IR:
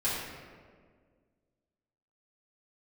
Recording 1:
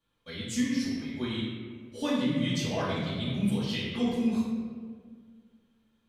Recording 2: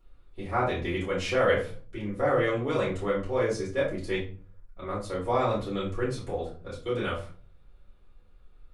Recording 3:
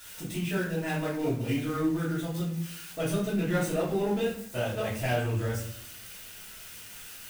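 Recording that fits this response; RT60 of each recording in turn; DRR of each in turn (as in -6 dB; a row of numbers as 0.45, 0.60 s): 1; 1.8 s, not exponential, 0.60 s; -10.5, -9.5, -9.5 dB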